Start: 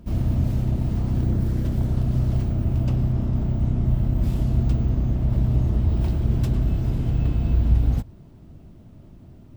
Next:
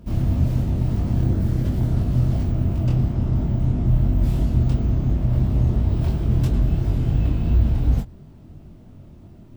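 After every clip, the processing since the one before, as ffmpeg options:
-af "flanger=delay=19.5:depth=6.4:speed=2.9,volume=5dB"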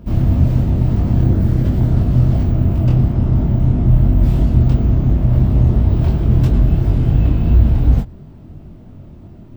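-af "equalizer=f=11k:w=0.32:g=-8,volume=6.5dB"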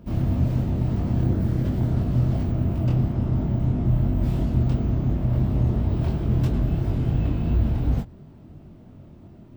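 -af "lowshelf=f=71:g=-9.5,volume=-5.5dB"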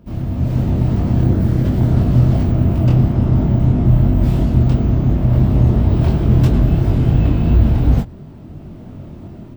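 -af "dynaudnorm=f=340:g=3:m=12.5dB"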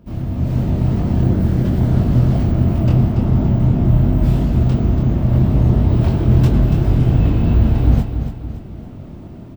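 -af "aecho=1:1:284|568|852|1136|1420:0.355|0.16|0.0718|0.0323|0.0145,volume=-1dB"

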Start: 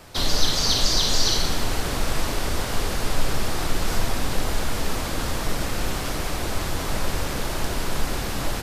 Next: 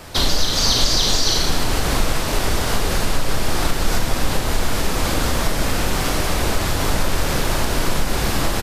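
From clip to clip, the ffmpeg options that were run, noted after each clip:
-af "acompressor=threshold=-22dB:ratio=2.5,aecho=1:1:37.9|110.8:0.355|0.282,volume=7.5dB"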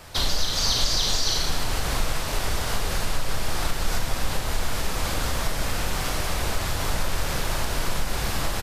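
-af "equalizer=f=290:t=o:w=1.4:g=-6,volume=-5.5dB"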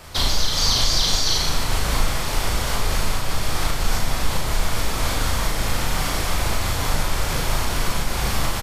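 -filter_complex "[0:a]asplit=2[a][b];[b]adelay=37,volume=-3.5dB[c];[a][c]amix=inputs=2:normalize=0,volume=2dB"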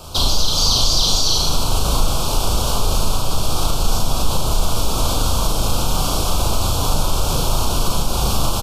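-filter_complex "[0:a]asplit=2[a][b];[b]alimiter=limit=-15.5dB:level=0:latency=1,volume=0dB[c];[a][c]amix=inputs=2:normalize=0,asuperstop=centerf=1900:order=4:qfactor=1.2"

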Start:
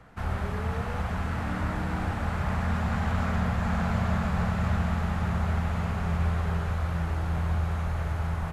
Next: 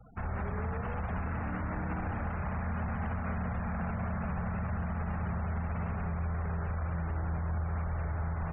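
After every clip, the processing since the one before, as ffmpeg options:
-af "alimiter=level_in=2.5dB:limit=-24dB:level=0:latency=1:release=50,volume=-2.5dB,lowpass=f=3.7k:p=1,afftfilt=real='re*gte(hypot(re,im),0.00562)':imag='im*gte(hypot(re,im),0.00562)':win_size=1024:overlap=0.75"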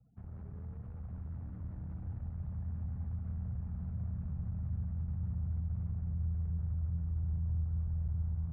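-af "aeval=exprs='0.0501*(cos(1*acos(clip(val(0)/0.0501,-1,1)))-cos(1*PI/2))+0.01*(cos(4*acos(clip(val(0)/0.0501,-1,1)))-cos(4*PI/2))':c=same,bandpass=f=130:t=q:w=1.2:csg=0,asubboost=boost=6:cutoff=110,volume=-8dB"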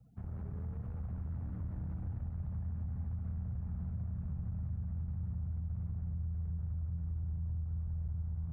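-af "acompressor=threshold=-40dB:ratio=6,volume=5dB"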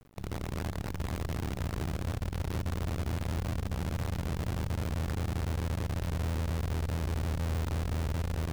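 -af "acrusher=bits=7:dc=4:mix=0:aa=0.000001,volume=4dB"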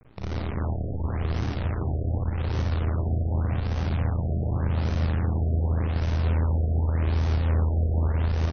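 -filter_complex "[0:a]asplit=2[a][b];[b]aecho=0:1:37|52|62:0.531|0.668|0.562[c];[a][c]amix=inputs=2:normalize=0,afftfilt=real='re*lt(b*sr/1024,730*pow(6500/730,0.5+0.5*sin(2*PI*0.86*pts/sr)))':imag='im*lt(b*sr/1024,730*pow(6500/730,0.5+0.5*sin(2*PI*0.86*pts/sr)))':win_size=1024:overlap=0.75,volume=2.5dB"

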